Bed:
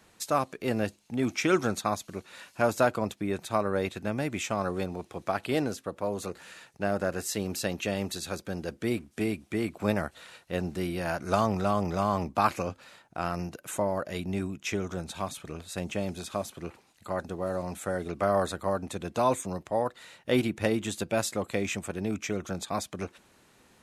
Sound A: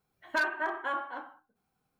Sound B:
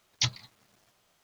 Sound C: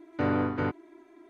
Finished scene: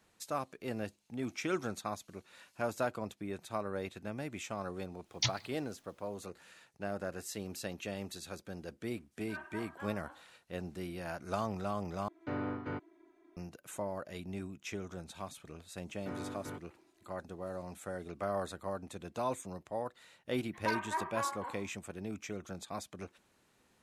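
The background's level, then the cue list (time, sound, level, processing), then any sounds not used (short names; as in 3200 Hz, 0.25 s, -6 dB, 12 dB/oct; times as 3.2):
bed -10 dB
5.01 add B -4.5 dB, fades 0.10 s
8.93 add A -14.5 dB + attack slew limiter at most 310 dB/s
12.08 replace with C -10.5 dB
15.87 add C -15.5 dB
20.31 add A -5.5 dB + ripple EQ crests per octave 0.85, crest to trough 11 dB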